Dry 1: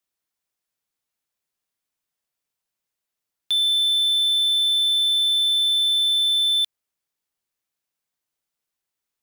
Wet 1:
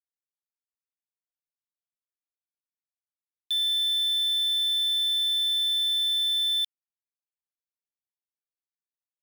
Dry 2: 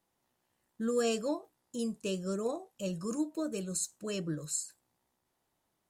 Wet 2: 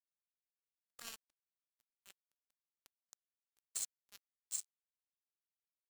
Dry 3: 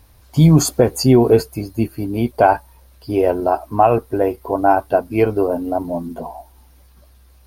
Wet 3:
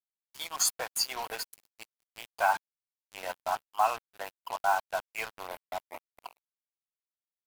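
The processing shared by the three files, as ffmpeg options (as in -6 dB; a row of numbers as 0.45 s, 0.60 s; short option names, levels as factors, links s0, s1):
-af "agate=range=0.0224:threshold=0.0112:ratio=3:detection=peak,highpass=f=930:w=0.5412,highpass=f=930:w=1.3066,acrusher=bits=4:mix=0:aa=0.5,volume=0.531"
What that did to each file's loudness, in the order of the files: -5.5 LU, -9.5 LU, -15.0 LU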